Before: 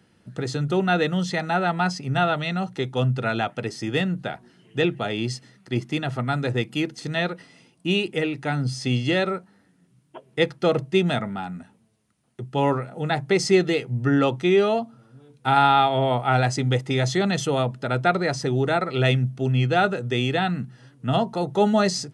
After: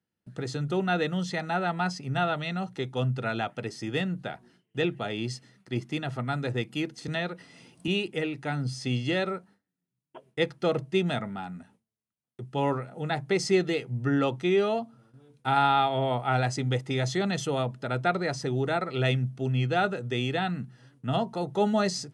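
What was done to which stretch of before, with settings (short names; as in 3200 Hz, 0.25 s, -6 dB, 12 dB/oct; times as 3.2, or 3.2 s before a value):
7.08–7.88 three-band squash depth 70%
whole clip: gate with hold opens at -43 dBFS; gain -5.5 dB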